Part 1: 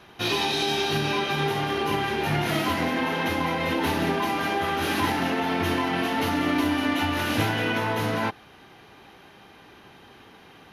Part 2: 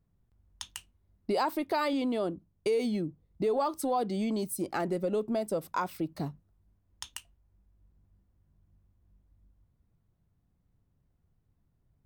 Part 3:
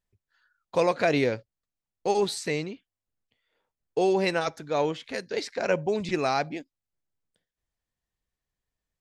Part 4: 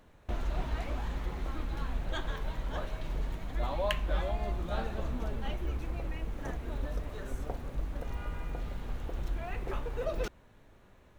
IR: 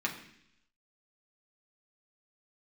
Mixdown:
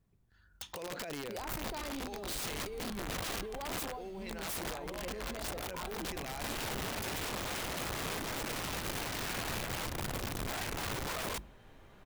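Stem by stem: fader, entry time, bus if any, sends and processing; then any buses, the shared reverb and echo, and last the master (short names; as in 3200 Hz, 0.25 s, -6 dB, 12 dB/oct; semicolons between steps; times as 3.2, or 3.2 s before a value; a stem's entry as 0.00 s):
-11.0 dB, 1.55 s, no send, notches 50/100/150 Hz; resonator bank F2 sus4, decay 0.21 s
-4.0 dB, 0.00 s, send -16 dB, dry
-7.0 dB, 0.00 s, send -22.5 dB, dry
-2.5 dB, 1.10 s, no send, notches 50/100/150/200/250/300/350 Hz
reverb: on, RT60 0.70 s, pre-delay 3 ms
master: negative-ratio compressor -37 dBFS, ratio -1; modulation noise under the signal 31 dB; wrapped overs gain 33 dB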